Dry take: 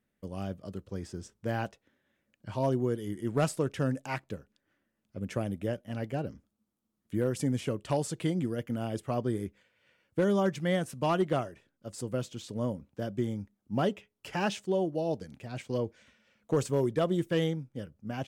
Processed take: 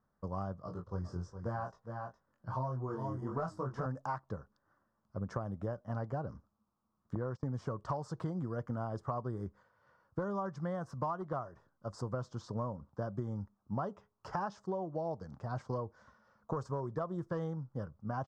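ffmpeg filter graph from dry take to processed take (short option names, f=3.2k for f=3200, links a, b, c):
-filter_complex "[0:a]asettb=1/sr,asplit=3[a][b][c];[a]atrim=end=0.624[d];[b]atrim=start=0.62:end=3.86,asetpts=PTS-STARTPTS,afade=t=in:d=0.004:c=qsin,afade=t=out:st=3.236:d=0.004:c=qsin,flanger=delay=16:depth=6.3:speed=1,asplit=2[e][f];[f]adelay=23,volume=-6dB[g];[e][g]amix=inputs=2:normalize=0,atrim=end_sample=142884,aecho=1:1:412:0.282,atrim=end_sample=142884[h];[c]atrim=start=3.856[i];[d][h]acrossfade=d=0.004:c1=hsin:c2=qsin[j];[j][i]acrossfade=d=0.004:c1=qsin:c2=hsin,asettb=1/sr,asplit=3[k][l][m];[k]atrim=end=7.154[n];[l]atrim=start=7.15:end=7.56,asetpts=PTS-STARTPTS,afade=t=in:d=0.004:c=qsin,afade=t=out:st=0.406:d=0.004:c=qsin,lowpass=5.5k,agate=range=-22dB:threshold=-37dB:ratio=16:release=100:detection=peak[o];[m]atrim=start=7.556[p];[n][o]acrossfade=d=0.004:c1=hsin:c2=qsin[q];[q][p]acrossfade=d=0.004:c1=qsin:c2=hsin,firequalizer=gain_entry='entry(130,0);entry(270,-8);entry(1100,10);entry(2400,-26);entry(5100,-7);entry(10000,-28)':delay=0.05:min_phase=1,acompressor=threshold=-37dB:ratio=10,volume=3.5dB"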